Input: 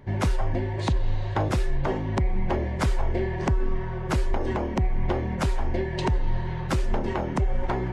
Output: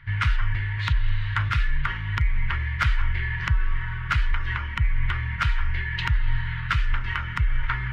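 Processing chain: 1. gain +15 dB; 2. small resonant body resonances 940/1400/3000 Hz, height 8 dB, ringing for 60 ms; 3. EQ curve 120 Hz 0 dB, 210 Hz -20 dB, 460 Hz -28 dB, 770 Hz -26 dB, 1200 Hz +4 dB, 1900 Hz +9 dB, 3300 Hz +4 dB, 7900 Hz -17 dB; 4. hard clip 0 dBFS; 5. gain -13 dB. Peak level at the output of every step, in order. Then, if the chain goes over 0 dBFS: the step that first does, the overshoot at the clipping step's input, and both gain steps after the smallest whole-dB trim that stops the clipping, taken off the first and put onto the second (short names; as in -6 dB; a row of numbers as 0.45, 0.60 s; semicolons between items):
+1.5, +3.5, +5.0, 0.0, -13.0 dBFS; step 1, 5.0 dB; step 1 +10 dB, step 5 -8 dB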